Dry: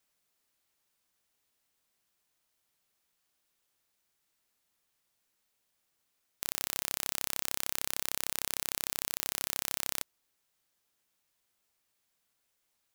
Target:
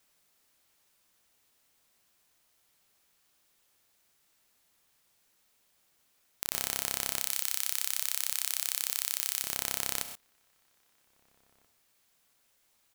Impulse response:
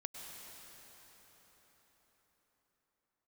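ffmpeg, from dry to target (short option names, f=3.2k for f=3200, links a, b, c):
-filter_complex "[0:a]asettb=1/sr,asplit=3[a][b][c];[a]atrim=end=7.194[d];[b]atrim=start=7.19:end=9.42,asetpts=PTS-STARTPTS,afade=t=in:d=0.004:c=qsin,afade=t=out:st=2.226:d=0.004:c=qsin,tiltshelf=f=970:g=-9.5[e];[c]atrim=start=9.416[f];[d][e]acrossfade=d=0.004:c1=hsin:c2=qsin[g];[g][f]acrossfade=d=0.004:c1=qsin:c2=hsin,acompressor=threshold=-30dB:ratio=5,asplit=2[h][i];[i]adelay=1633,volume=-27dB,highshelf=f=4k:g=-36.7[j];[h][j]amix=inputs=2:normalize=0[k];[1:a]atrim=start_sample=2205,atrim=end_sample=6174[l];[k][l]afir=irnorm=-1:irlink=0,alimiter=level_in=14dB:limit=-1dB:release=50:level=0:latency=1,volume=-2dB"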